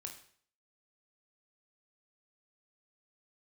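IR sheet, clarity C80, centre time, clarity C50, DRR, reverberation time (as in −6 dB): 12.0 dB, 19 ms, 9.0 dB, 2.5 dB, 0.55 s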